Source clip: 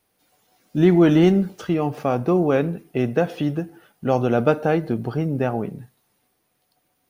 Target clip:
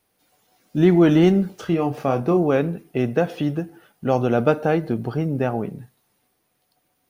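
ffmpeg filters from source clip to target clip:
ffmpeg -i in.wav -filter_complex "[0:a]asettb=1/sr,asplit=3[link_01][link_02][link_03];[link_01]atrim=end=1.554[link_04];[link_02]atrim=start=1.55:end=2.37,asetpts=PTS-STARTPTS,afade=type=in:duration=0.004:curve=qsin,afade=type=out:start_time=0.816:duration=0.004:curve=qsin,asplit=2[link_05][link_06];[link_06]adelay=30,volume=-9dB[link_07];[link_05][link_07]amix=inputs=2:normalize=0,atrim=end_sample=36162[link_08];[link_03]atrim=start=2.366[link_09];[link_04][link_08]acrossfade=duration=0.004:curve1=hsin:curve2=qsin[link_10];[link_10][link_09]acrossfade=duration=0.004:curve1=qsin:curve2=hsin" out.wav

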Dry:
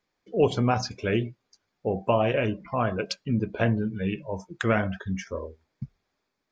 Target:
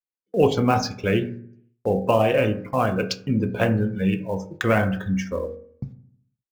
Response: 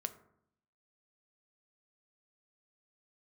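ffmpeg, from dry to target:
-filter_complex "[0:a]agate=range=-32dB:threshold=-42dB:ratio=16:detection=peak,acrossover=split=660[link_01][link_02];[link_02]acrusher=bits=5:mode=log:mix=0:aa=0.000001[link_03];[link_01][link_03]amix=inputs=2:normalize=0[link_04];[1:a]atrim=start_sample=2205,asetrate=52920,aresample=44100[link_05];[link_04][link_05]afir=irnorm=-1:irlink=0,volume=7dB"

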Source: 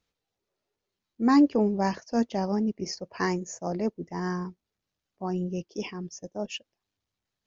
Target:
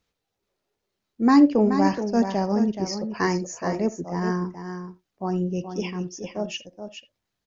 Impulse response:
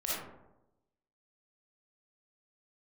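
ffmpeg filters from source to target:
-filter_complex "[0:a]aecho=1:1:426:0.376,asplit=2[link_01][link_02];[1:a]atrim=start_sample=2205,atrim=end_sample=3969,lowpass=3000[link_03];[link_02][link_03]afir=irnorm=-1:irlink=0,volume=-16dB[link_04];[link_01][link_04]amix=inputs=2:normalize=0,volume=3dB"

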